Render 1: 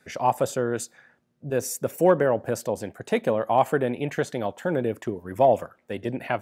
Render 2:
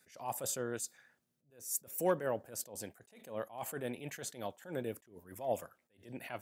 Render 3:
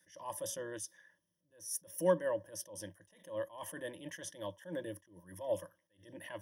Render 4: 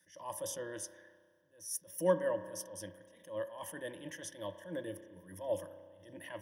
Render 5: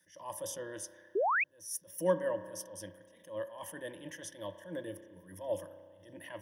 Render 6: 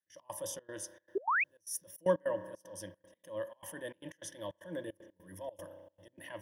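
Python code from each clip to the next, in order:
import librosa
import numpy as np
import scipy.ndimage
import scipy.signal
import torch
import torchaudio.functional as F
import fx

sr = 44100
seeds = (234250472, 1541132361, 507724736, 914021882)

y1 = librosa.effects.preemphasis(x, coef=0.8, zi=[0.0])
y1 = fx.attack_slew(y1, sr, db_per_s=140.0)
y1 = y1 * 10.0 ** (1.0 / 20.0)
y2 = fx.ripple_eq(y1, sr, per_octave=1.2, db=18)
y2 = y2 * 10.0 ** (-5.0 / 20.0)
y3 = fx.rev_spring(y2, sr, rt60_s=1.8, pass_ms=(32,), chirp_ms=60, drr_db=10.5)
y4 = fx.spec_paint(y3, sr, seeds[0], shape='rise', start_s=1.15, length_s=0.29, low_hz=350.0, high_hz=2700.0, level_db=-29.0)
y5 = fx.step_gate(y4, sr, bpm=153, pattern='.x.xxx.xxx', floor_db=-24.0, edge_ms=4.5)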